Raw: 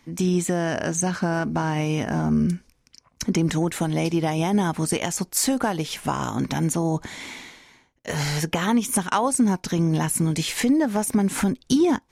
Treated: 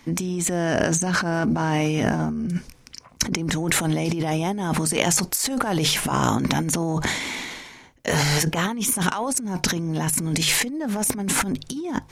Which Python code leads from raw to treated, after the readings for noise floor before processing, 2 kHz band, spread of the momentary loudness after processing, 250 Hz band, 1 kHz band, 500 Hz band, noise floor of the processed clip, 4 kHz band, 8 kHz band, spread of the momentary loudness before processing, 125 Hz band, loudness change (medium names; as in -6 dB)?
-64 dBFS, +4.5 dB, 9 LU, -2.5 dB, +0.5 dB, -0.5 dB, -50 dBFS, +6.0 dB, +4.0 dB, 6 LU, 0.0 dB, +0.5 dB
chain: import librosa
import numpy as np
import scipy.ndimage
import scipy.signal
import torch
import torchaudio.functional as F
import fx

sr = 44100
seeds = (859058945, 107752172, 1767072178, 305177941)

y = fx.transient(x, sr, attack_db=3, sustain_db=8)
y = fx.hum_notches(y, sr, base_hz=50, count=3)
y = fx.over_compress(y, sr, threshold_db=-26.0, ratio=-1.0)
y = y * librosa.db_to_amplitude(2.5)